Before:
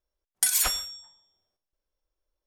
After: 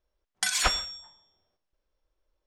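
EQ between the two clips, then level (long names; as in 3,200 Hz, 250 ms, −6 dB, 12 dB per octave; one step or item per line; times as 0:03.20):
high-frequency loss of the air 110 metres
+6.5 dB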